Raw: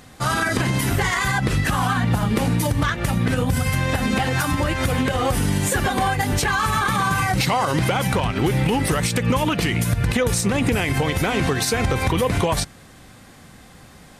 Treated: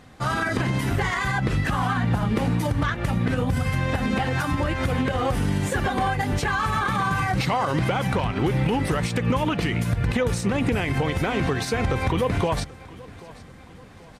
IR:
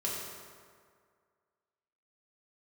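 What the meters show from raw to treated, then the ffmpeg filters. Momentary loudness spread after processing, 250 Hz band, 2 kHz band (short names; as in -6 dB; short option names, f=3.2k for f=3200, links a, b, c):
2 LU, -2.5 dB, -4.0 dB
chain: -af "lowpass=f=2.9k:p=1,aecho=1:1:784|1568|2352|3136:0.0944|0.0453|0.0218|0.0104,volume=-2.5dB"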